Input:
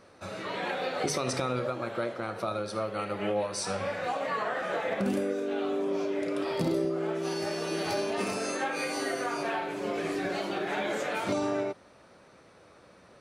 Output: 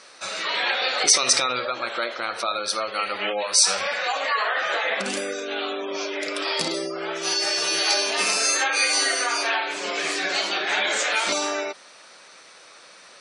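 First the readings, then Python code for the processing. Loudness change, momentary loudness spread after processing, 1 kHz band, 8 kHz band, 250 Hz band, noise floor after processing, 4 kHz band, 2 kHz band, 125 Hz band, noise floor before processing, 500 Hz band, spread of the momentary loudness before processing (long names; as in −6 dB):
+9.0 dB, 11 LU, +6.5 dB, +18.5 dB, −3.5 dB, −48 dBFS, +17.5 dB, +12.0 dB, −10.5 dB, −56 dBFS, +1.0 dB, 4 LU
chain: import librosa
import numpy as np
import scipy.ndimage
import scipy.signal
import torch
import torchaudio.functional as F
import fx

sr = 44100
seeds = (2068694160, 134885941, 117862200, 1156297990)

y = fx.weighting(x, sr, curve='ITU-R 468')
y = fx.spec_gate(y, sr, threshold_db=-25, keep='strong')
y = F.gain(torch.from_numpy(y), 7.0).numpy()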